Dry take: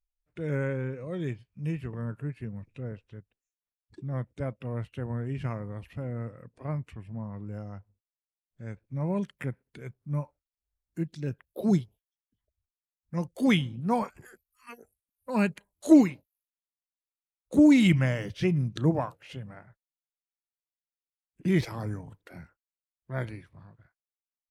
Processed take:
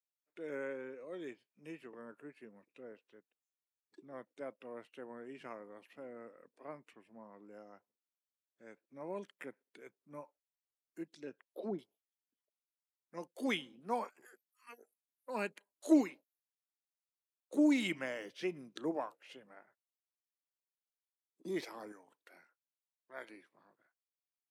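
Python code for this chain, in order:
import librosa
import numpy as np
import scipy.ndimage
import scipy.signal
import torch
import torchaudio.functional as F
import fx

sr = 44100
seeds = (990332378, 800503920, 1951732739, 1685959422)

y = scipy.signal.sosfilt(scipy.signal.butter(4, 290.0, 'highpass', fs=sr, output='sos'), x)
y = fx.env_lowpass_down(y, sr, base_hz=960.0, full_db=-26.5, at=(11.13, 11.79))
y = fx.spec_box(y, sr, start_s=21.26, length_s=0.3, low_hz=1300.0, high_hz=3300.0, gain_db=-17)
y = fx.low_shelf(y, sr, hz=470.0, db=-11.0, at=(21.92, 23.3))
y = y * 10.0 ** (-8.0 / 20.0)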